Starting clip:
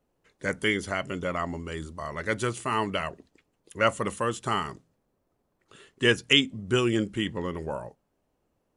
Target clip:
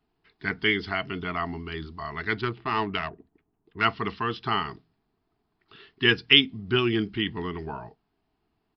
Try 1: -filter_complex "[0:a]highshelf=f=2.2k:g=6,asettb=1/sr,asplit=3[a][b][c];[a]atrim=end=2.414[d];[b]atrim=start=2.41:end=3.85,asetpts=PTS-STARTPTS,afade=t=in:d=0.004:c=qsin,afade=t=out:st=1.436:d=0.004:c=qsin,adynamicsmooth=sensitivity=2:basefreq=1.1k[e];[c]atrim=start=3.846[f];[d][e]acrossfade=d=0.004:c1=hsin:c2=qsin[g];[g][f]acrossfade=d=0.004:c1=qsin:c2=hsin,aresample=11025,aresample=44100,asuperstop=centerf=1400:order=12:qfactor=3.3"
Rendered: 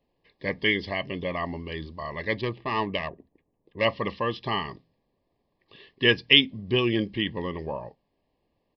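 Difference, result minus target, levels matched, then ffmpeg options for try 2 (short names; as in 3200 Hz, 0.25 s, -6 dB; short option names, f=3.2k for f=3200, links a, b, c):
500 Hz band +2.5 dB
-filter_complex "[0:a]highshelf=f=2.2k:g=6,asettb=1/sr,asplit=3[a][b][c];[a]atrim=end=2.414[d];[b]atrim=start=2.41:end=3.85,asetpts=PTS-STARTPTS,afade=t=in:d=0.004:c=qsin,afade=t=out:st=1.436:d=0.004:c=qsin,adynamicsmooth=sensitivity=2:basefreq=1.1k[e];[c]atrim=start=3.846[f];[d][e]acrossfade=d=0.004:c1=hsin:c2=qsin[g];[g][f]acrossfade=d=0.004:c1=qsin:c2=hsin,aresample=11025,aresample=44100,asuperstop=centerf=540:order=12:qfactor=3.3"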